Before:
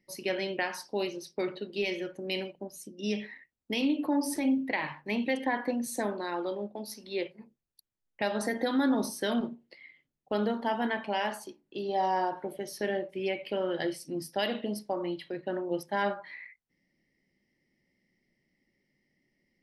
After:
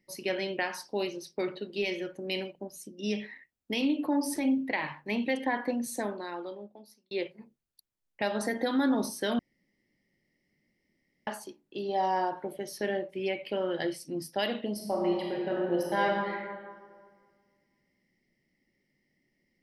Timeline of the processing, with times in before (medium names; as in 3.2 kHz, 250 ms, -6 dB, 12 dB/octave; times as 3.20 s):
5.82–7.11 s: fade out linear
9.39–11.27 s: room tone
14.73–16.28 s: reverb throw, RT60 1.8 s, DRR -2 dB